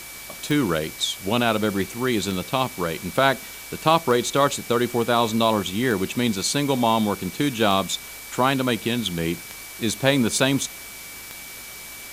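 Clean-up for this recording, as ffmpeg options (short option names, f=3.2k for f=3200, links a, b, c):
-af "adeclick=t=4,bandreject=f=51.9:t=h:w=4,bandreject=f=103.8:t=h:w=4,bandreject=f=155.7:t=h:w=4,bandreject=f=2.3k:w=30,afwtdn=0.013"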